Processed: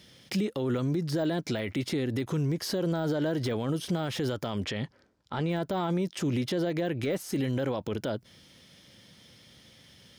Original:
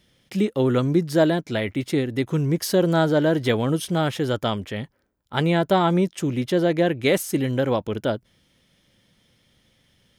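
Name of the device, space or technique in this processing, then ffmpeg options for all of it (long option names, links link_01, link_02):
broadcast voice chain: -filter_complex "[0:a]highpass=72,deesser=0.9,acompressor=threshold=-27dB:ratio=3,equalizer=frequency=4900:width_type=o:width=0.77:gain=5.5,alimiter=level_in=3dB:limit=-24dB:level=0:latency=1:release=62,volume=-3dB,asplit=3[link_01][link_02][link_03];[link_01]afade=type=out:start_time=4.64:duration=0.02[link_04];[link_02]lowpass=6800,afade=type=in:start_time=4.64:duration=0.02,afade=type=out:start_time=5.48:duration=0.02[link_05];[link_03]afade=type=in:start_time=5.48:duration=0.02[link_06];[link_04][link_05][link_06]amix=inputs=3:normalize=0,volume=6dB"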